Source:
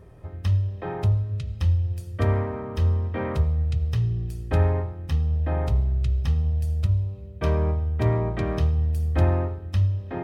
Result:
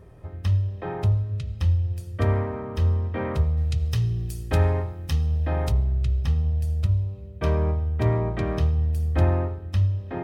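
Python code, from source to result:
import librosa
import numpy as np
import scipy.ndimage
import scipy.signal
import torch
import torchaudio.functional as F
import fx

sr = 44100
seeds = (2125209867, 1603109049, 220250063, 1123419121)

y = fx.high_shelf(x, sr, hz=3500.0, db=11.5, at=(3.57, 5.72))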